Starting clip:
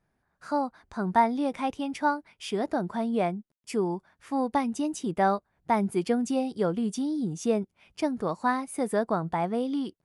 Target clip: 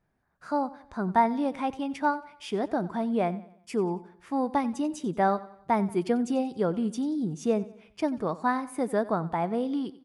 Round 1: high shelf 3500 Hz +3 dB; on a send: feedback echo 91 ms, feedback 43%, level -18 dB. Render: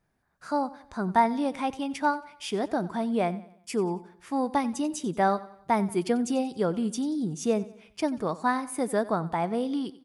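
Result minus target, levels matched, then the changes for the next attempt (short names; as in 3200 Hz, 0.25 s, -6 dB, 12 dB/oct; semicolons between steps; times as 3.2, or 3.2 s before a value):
8000 Hz band +7.0 dB
change: high shelf 3500 Hz -6 dB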